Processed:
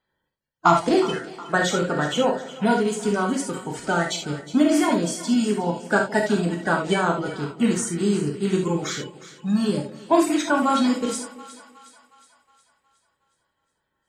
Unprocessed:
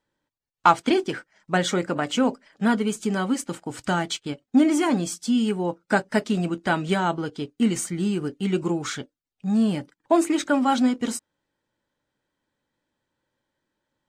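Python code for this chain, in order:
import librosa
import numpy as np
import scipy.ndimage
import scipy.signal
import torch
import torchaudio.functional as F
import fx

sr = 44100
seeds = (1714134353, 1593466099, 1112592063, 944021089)

y = fx.spec_quant(x, sr, step_db=30)
y = fx.echo_split(y, sr, split_hz=810.0, low_ms=167, high_ms=364, feedback_pct=52, wet_db=-15.5)
y = fx.rev_gated(y, sr, seeds[0], gate_ms=100, shape='flat', drr_db=1.0)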